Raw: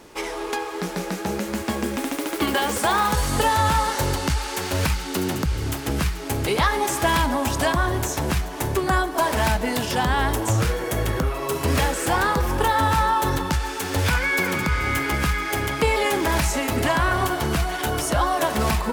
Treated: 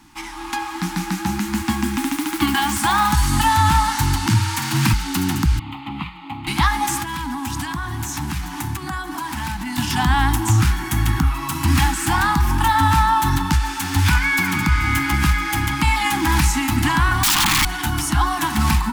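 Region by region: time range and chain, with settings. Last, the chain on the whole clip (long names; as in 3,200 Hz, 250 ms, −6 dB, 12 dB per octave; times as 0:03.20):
0:04.26–0:04.93: frequency shifter +46 Hz + flutter between parallel walls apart 9.1 metres, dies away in 0.39 s
0:05.59–0:06.47: high-pass filter 230 Hz + high-frequency loss of the air 250 metres + phaser with its sweep stopped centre 1,600 Hz, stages 6
0:07.02–0:09.78: high-pass filter 77 Hz + downward compressor 10 to 1, threshold −26 dBFS
0:17.23–0:17.65: low-pass with resonance 1,100 Hz, resonance Q 13 + wrap-around overflow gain 14.5 dB
whole clip: elliptic band-stop filter 320–800 Hz, stop band 40 dB; low-shelf EQ 470 Hz +3 dB; automatic gain control gain up to 6.5 dB; level −2 dB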